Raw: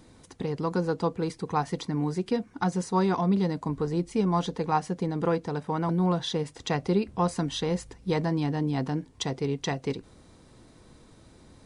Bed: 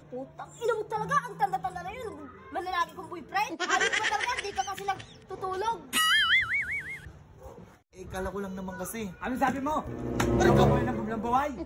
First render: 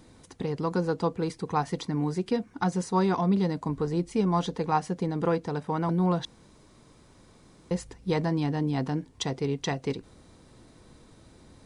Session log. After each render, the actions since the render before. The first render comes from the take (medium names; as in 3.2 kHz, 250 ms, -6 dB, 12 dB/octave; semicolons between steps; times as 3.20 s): 6.25–7.71 s: room tone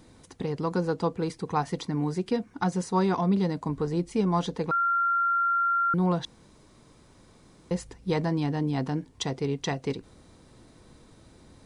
4.71–5.94 s: bleep 1.38 kHz -21.5 dBFS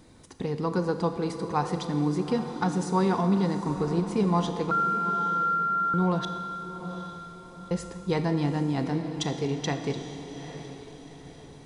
echo that smears into a reverb 824 ms, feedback 43%, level -11 dB; Schroeder reverb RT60 1.9 s, combs from 27 ms, DRR 8 dB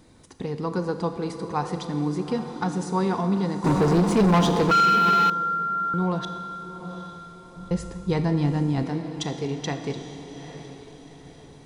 3.64–5.30 s: waveshaping leveller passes 3; 7.55–8.83 s: bass shelf 130 Hz +12 dB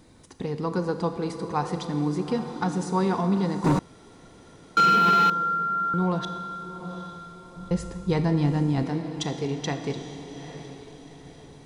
3.79–4.77 s: room tone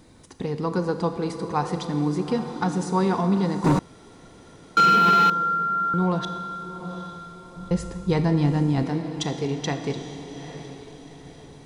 trim +2 dB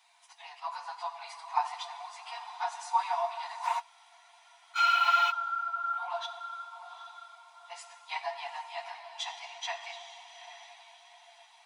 phase randomisation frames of 50 ms; rippled Chebyshev high-pass 670 Hz, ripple 9 dB